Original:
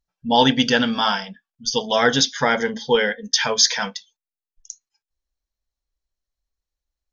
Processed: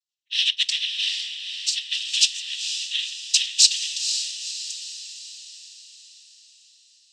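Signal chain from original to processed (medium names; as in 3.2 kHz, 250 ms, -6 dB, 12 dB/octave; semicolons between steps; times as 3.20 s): Chebyshev high-pass 2.9 kHz, order 6; noise-vocoded speech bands 12; on a send: echo that smears into a reverb 493 ms, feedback 52%, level -7.5 dB; on the sum: trim +2 dB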